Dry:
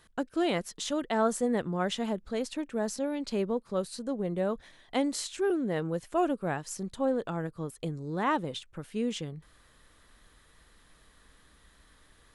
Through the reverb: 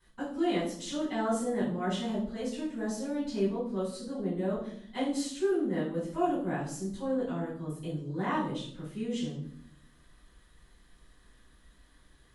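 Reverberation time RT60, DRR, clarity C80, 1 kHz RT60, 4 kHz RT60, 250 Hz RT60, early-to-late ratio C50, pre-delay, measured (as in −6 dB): 0.65 s, −13.5 dB, 8.5 dB, 0.55 s, 0.50 s, 1.1 s, 4.0 dB, 3 ms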